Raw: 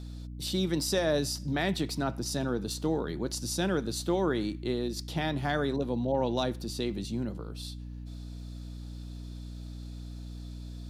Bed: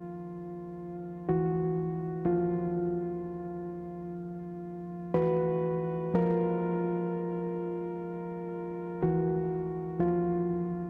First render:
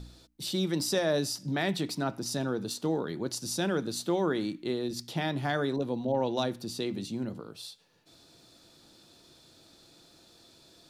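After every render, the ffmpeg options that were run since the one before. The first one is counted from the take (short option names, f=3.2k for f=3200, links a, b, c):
-af "bandreject=f=60:t=h:w=4,bandreject=f=120:t=h:w=4,bandreject=f=180:t=h:w=4,bandreject=f=240:t=h:w=4,bandreject=f=300:t=h:w=4"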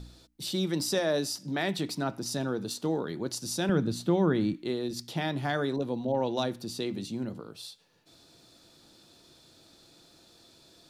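-filter_complex "[0:a]asettb=1/sr,asplit=3[a][b][c];[a]atrim=end=1.004[d];[b]atrim=start=1:end=1.79,asetpts=PTS-STARTPTS,afade=t=in:d=0.004:c=qsin,afade=t=out:st=0.786:d=0.004:c=qsin,highpass=160[e];[c]atrim=start=1.786[f];[d][e]acrossfade=d=0.004:c1=hsin:c2=qsin[g];[g][f]acrossfade=d=0.004:c1=qsin:c2=hsin,asettb=1/sr,asplit=3[h][i][j];[h]atrim=end=3.694[k];[i]atrim=start=3.69:end=4.54,asetpts=PTS-STARTPTS,afade=t=in:d=0.004:c=qsin,afade=t=out:st=0.846:d=0.004:c=qsin,bass=f=250:g=11,treble=f=4k:g=-6[l];[j]atrim=start=4.536[m];[k][l]acrossfade=d=0.004:c1=hsin:c2=qsin[n];[n][m]acrossfade=d=0.004:c1=qsin:c2=hsin"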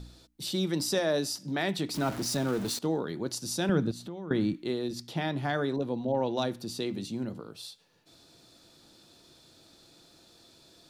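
-filter_complex "[0:a]asettb=1/sr,asplit=3[a][b][c];[a]atrim=end=1.944[d];[b]atrim=start=1.94:end=2.79,asetpts=PTS-STARTPTS,afade=t=in:d=0.004:c=qsin,afade=t=out:st=0.846:d=0.004:c=qsin,aeval=exprs='val(0)+0.5*0.0188*sgn(val(0))':c=same[e];[c]atrim=start=2.786[f];[d][e]acrossfade=d=0.004:c1=hsin:c2=qsin[g];[g][f]acrossfade=d=0.004:c1=qsin:c2=hsin,asettb=1/sr,asplit=3[h][i][j];[h]atrim=end=3.914[k];[i]atrim=start=3.91:end=4.31,asetpts=PTS-STARTPTS,afade=t=in:d=0.004:c=qsin,afade=t=out:st=0.396:d=0.004:c=qsin,acompressor=threshold=-41dB:ratio=3:attack=3.2:release=140:knee=1:detection=peak[l];[j]atrim=start=4.306[m];[k][l]acrossfade=d=0.004:c1=hsin:c2=qsin[n];[n][m]acrossfade=d=0.004:c1=qsin:c2=hsin,asettb=1/sr,asplit=3[o][p][q];[o]atrim=end=4.924[r];[p]atrim=start=4.92:end=6.42,asetpts=PTS-STARTPTS,afade=t=in:d=0.004:c=qsin,afade=t=out:st=1.496:d=0.004:c=qsin,highshelf=f=4.6k:g=-5[s];[q]atrim=start=6.416[t];[r][s]acrossfade=d=0.004:c1=hsin:c2=qsin[u];[u][t]acrossfade=d=0.004:c1=qsin:c2=hsin"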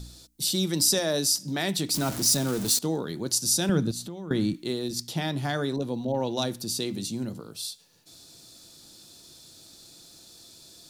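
-af "bass=f=250:g=4,treble=f=4k:g=14"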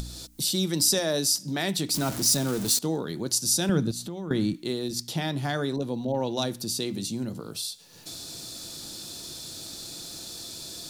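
-af "acompressor=mode=upward:threshold=-28dB:ratio=2.5"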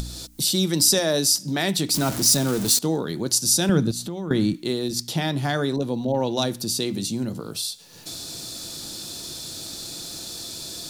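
-af "volume=4.5dB"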